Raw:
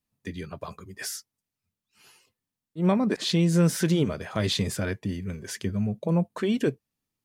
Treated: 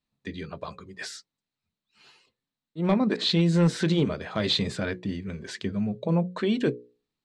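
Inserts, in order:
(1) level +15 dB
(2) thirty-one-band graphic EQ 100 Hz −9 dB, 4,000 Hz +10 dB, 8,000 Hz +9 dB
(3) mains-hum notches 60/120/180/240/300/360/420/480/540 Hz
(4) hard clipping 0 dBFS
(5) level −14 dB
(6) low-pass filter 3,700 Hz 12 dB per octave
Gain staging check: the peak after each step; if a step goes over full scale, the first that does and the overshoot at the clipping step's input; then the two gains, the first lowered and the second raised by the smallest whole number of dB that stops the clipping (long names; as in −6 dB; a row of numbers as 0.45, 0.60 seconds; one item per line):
+4.0, +6.0, +6.0, 0.0, −14.0, −13.5 dBFS
step 1, 6.0 dB
step 1 +9 dB, step 5 −8 dB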